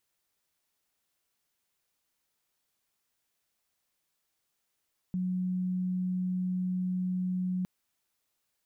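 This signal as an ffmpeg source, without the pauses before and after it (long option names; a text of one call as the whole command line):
ffmpeg -f lavfi -i "sine=frequency=183:duration=2.51:sample_rate=44100,volume=-9.94dB" out.wav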